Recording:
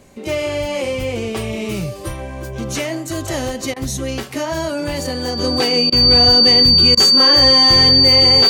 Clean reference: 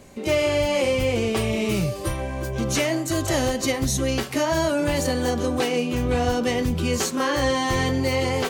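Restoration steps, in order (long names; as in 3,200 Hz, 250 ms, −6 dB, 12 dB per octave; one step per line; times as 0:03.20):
notch filter 4,600 Hz, Q 30
repair the gap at 0:03.74/0:05.90/0:06.95, 21 ms
level correction −4.5 dB, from 0:05.39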